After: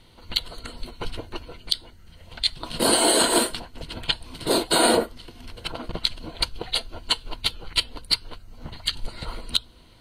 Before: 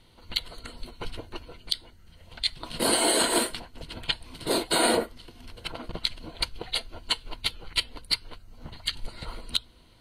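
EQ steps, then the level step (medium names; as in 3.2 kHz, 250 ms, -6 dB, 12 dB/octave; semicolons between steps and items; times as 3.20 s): peaking EQ 11 kHz -3.5 dB 0.2 oct; dynamic bell 2.1 kHz, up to -5 dB, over -49 dBFS, Q 3.1; +4.5 dB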